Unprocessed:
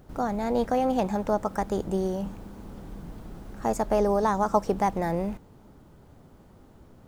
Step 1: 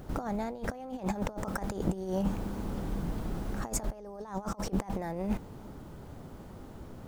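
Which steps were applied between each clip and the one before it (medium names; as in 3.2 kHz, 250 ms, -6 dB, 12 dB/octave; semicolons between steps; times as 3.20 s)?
compressor with a negative ratio -32 dBFS, ratio -0.5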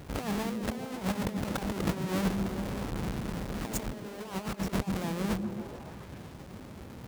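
square wave that keeps the level; high-pass 54 Hz; repeats whose band climbs or falls 140 ms, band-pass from 170 Hz, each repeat 0.7 oct, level -1.5 dB; trim -4 dB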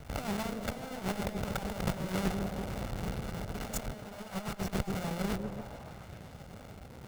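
comb filter that takes the minimum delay 1.4 ms; trim -1 dB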